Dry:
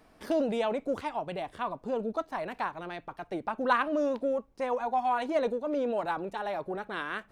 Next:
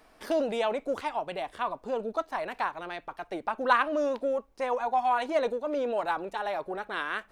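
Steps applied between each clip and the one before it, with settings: bell 130 Hz -10.5 dB 2.6 oct; gain +3.5 dB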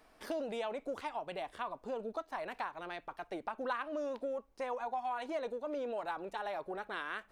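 compressor 3:1, threshold -31 dBFS, peak gain reduction 10.5 dB; gain -5 dB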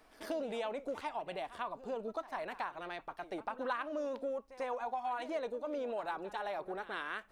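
pre-echo 95 ms -15.5 dB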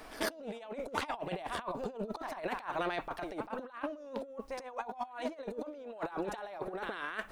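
negative-ratio compressor -45 dBFS, ratio -0.5; gain +7 dB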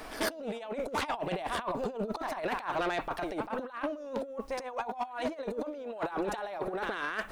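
soft clip -30 dBFS, distortion -15 dB; gain +6 dB

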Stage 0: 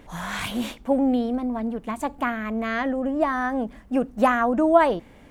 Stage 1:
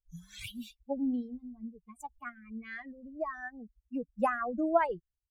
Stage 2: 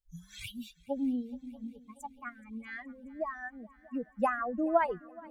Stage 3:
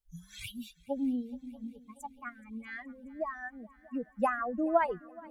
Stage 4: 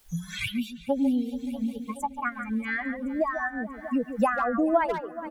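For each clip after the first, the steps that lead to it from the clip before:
per-bin expansion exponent 3; gain -6.5 dB
multi-head echo 0.212 s, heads second and third, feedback 56%, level -23 dB
bell 11000 Hz +5 dB 0.25 oct
speakerphone echo 0.14 s, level -9 dB; three-band squash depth 70%; gain +8 dB

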